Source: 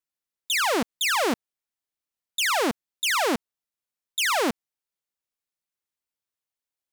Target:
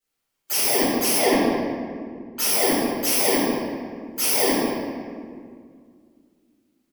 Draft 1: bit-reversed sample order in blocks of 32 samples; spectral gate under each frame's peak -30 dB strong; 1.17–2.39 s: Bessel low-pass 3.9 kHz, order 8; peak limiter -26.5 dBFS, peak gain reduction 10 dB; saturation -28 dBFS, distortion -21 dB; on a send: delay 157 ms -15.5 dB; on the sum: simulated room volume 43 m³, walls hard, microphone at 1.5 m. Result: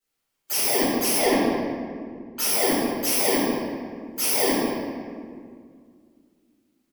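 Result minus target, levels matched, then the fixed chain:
saturation: distortion +18 dB
bit-reversed sample order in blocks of 32 samples; spectral gate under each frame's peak -30 dB strong; 1.17–2.39 s: Bessel low-pass 3.9 kHz, order 8; peak limiter -26.5 dBFS, peak gain reduction 10 dB; saturation -18 dBFS, distortion -39 dB; on a send: delay 157 ms -15.5 dB; on the sum: simulated room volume 43 m³, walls hard, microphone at 1.5 m

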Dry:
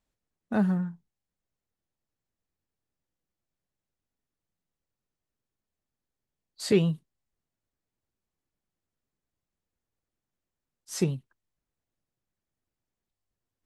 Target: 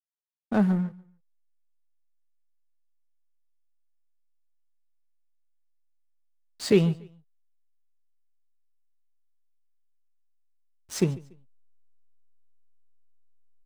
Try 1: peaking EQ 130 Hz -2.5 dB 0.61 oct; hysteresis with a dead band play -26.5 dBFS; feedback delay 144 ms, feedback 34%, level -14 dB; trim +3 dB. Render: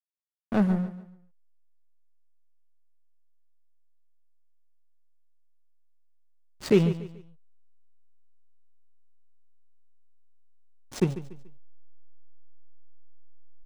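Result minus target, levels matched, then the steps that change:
hysteresis with a dead band: distortion +9 dB; echo-to-direct +8.5 dB
change: hysteresis with a dead band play -35.5 dBFS; change: feedback delay 144 ms, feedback 34%, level -22.5 dB

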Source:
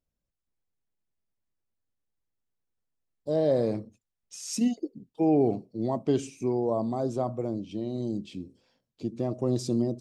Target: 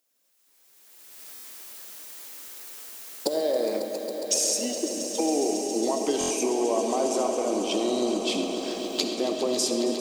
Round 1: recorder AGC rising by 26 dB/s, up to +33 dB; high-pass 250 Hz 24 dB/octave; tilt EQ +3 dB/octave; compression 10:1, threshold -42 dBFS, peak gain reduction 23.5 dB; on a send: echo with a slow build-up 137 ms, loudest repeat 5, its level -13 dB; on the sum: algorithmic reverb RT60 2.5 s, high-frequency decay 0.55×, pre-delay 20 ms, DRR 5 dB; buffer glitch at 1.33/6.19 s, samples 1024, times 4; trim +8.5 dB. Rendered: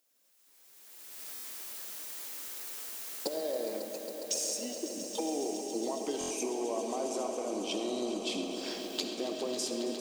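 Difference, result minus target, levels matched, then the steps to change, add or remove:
compression: peak gain reduction +9.5 dB
change: compression 10:1, threshold -31.5 dBFS, peak gain reduction 14 dB

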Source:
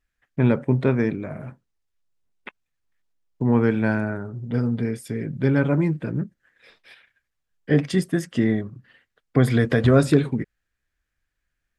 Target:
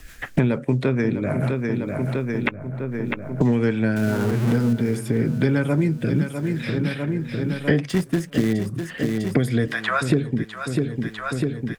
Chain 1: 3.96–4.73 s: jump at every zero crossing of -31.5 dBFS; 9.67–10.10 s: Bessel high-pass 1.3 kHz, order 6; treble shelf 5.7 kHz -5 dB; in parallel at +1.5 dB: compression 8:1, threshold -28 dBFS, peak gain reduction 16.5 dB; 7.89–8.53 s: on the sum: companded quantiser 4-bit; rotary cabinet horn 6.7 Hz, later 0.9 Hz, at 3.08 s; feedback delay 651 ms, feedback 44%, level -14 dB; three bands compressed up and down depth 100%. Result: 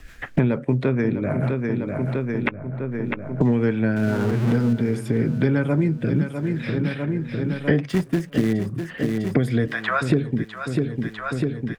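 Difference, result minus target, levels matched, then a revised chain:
8 kHz band -6.0 dB
3.96–4.73 s: jump at every zero crossing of -31.5 dBFS; 9.67–10.10 s: Bessel high-pass 1.3 kHz, order 6; treble shelf 5.7 kHz +6.5 dB; in parallel at +1.5 dB: compression 8:1, threshold -28 dBFS, peak gain reduction 16.5 dB; 7.89–8.53 s: on the sum: companded quantiser 4-bit; rotary cabinet horn 6.7 Hz, later 0.9 Hz, at 3.08 s; feedback delay 651 ms, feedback 44%, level -14 dB; three bands compressed up and down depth 100%

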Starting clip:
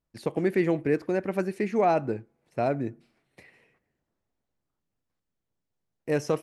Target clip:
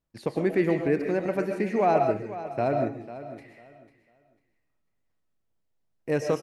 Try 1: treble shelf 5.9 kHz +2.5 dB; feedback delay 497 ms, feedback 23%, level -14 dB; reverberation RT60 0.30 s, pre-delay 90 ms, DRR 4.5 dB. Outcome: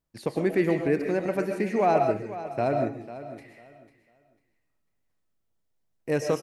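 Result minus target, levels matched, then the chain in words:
8 kHz band +3.5 dB
treble shelf 5.9 kHz -4 dB; feedback delay 497 ms, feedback 23%, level -14 dB; reverberation RT60 0.30 s, pre-delay 90 ms, DRR 4.5 dB

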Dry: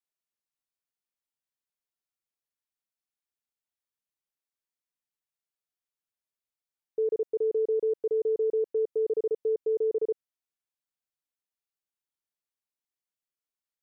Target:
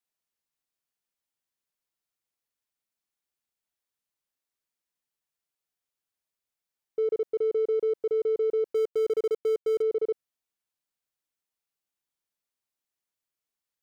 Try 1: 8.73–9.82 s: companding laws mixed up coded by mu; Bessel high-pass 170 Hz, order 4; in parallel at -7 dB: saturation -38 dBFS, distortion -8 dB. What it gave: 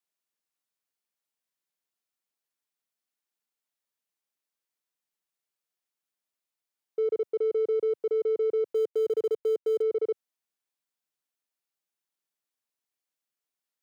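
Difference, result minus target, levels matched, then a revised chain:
125 Hz band -4.0 dB
8.73–9.82 s: companding laws mixed up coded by mu; in parallel at -7 dB: saturation -38 dBFS, distortion -8 dB

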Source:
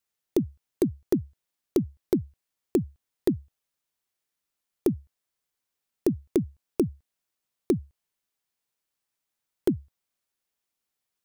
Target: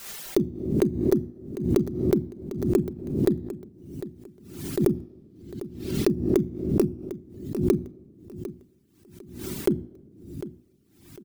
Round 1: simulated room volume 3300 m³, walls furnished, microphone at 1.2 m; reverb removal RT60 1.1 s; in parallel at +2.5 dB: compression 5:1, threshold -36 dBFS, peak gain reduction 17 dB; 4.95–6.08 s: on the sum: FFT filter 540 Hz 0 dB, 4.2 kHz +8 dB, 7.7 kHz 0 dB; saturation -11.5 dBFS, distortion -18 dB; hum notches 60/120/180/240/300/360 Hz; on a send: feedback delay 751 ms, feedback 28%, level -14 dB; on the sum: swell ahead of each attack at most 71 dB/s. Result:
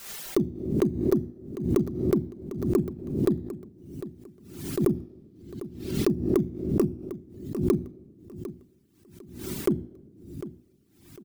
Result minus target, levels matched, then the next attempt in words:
saturation: distortion +16 dB
simulated room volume 3300 m³, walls furnished, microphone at 1.2 m; reverb removal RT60 1.1 s; in parallel at +2.5 dB: compression 5:1, threshold -36 dBFS, peak gain reduction 17 dB; 4.95–6.08 s: on the sum: FFT filter 540 Hz 0 dB, 4.2 kHz +8 dB, 7.7 kHz 0 dB; saturation -2 dBFS, distortion -34 dB; hum notches 60/120/180/240/300/360 Hz; on a send: feedback delay 751 ms, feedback 28%, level -14 dB; on the sum: swell ahead of each attack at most 71 dB/s

